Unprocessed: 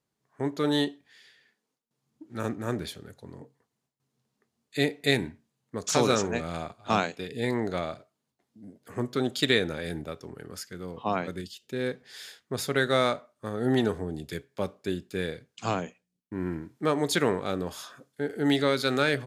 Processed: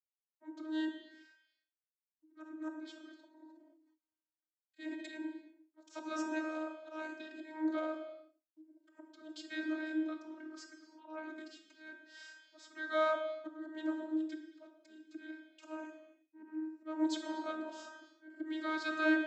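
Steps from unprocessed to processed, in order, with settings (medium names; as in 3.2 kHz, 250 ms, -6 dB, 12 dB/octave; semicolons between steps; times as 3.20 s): gate -58 dBFS, range -51 dB; slow attack 328 ms; vocoder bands 32, saw 313 Hz; gated-style reverb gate 380 ms falling, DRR 5.5 dB; 3.38–5.14 s: decay stretcher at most 43 dB/s; trim -4 dB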